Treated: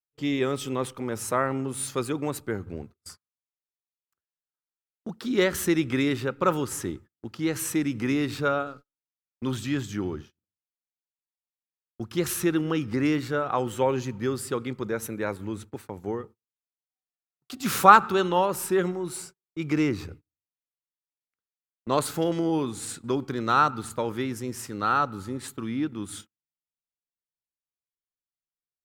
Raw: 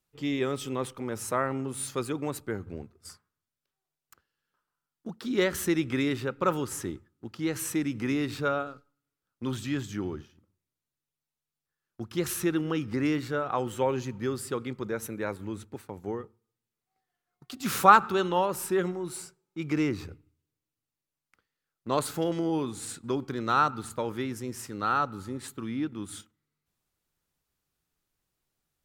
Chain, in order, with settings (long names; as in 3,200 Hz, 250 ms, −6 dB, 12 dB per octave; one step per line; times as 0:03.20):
noise gate −48 dBFS, range −29 dB
level +3 dB